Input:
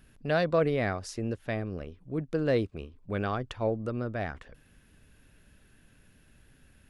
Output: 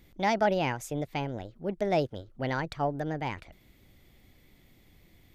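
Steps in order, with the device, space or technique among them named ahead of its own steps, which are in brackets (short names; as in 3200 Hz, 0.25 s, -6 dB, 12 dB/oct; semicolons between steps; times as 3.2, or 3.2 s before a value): nightcore (varispeed +29%)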